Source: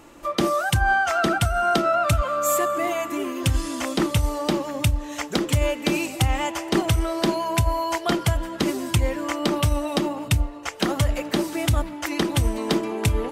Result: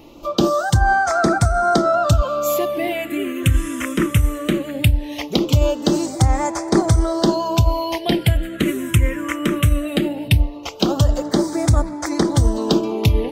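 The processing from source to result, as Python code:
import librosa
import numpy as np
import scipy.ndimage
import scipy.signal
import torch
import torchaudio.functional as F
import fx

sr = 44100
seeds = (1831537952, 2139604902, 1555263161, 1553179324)

y = fx.phaser_stages(x, sr, stages=4, low_hz=770.0, high_hz=2900.0, hz=0.19, feedback_pct=5)
y = y * 10.0 ** (6.0 / 20.0)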